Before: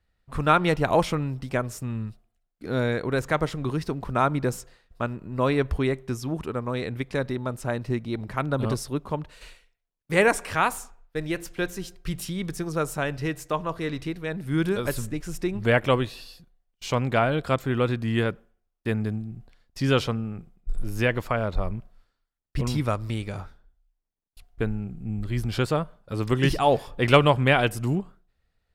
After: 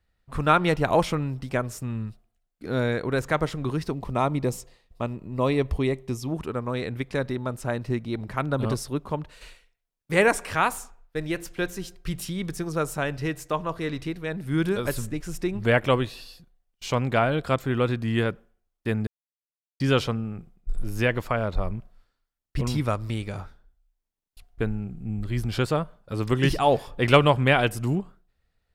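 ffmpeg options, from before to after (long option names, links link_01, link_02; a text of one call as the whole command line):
ffmpeg -i in.wav -filter_complex "[0:a]asettb=1/sr,asplit=3[link_01][link_02][link_03];[link_01]atrim=end=3.914[link_04];[link_02]atrim=start=3.91:end=6.32,asetpts=PTS-STARTPTS,afade=type=in:duration=0.004:curve=qsin,afade=type=out:start_time=2.406:duration=0.004:curve=qsin,equalizer=frequency=1500:width_type=o:width=0.33:gain=-13.5[link_05];[link_03]atrim=start=6.316[link_06];[link_04][link_05]acrossfade=duration=0.004:curve1=hsin:curve2=qsin[link_07];[link_07][link_06]acrossfade=duration=0.004:curve1=qsin:curve2=hsin,asplit=3[link_08][link_09][link_10];[link_08]atrim=end=19.07,asetpts=PTS-STARTPTS,afade=type=out:start_time=19.066:duration=0.004:curve=hsin[link_11];[link_09]atrim=start=19.07:end=19.8,asetpts=PTS-STARTPTS,volume=0[link_12];[link_10]atrim=start=19.8,asetpts=PTS-STARTPTS,afade=type=in:duration=0.004:curve=hsin[link_13];[link_11][link_12][link_13]concat=n=3:v=0:a=1" out.wav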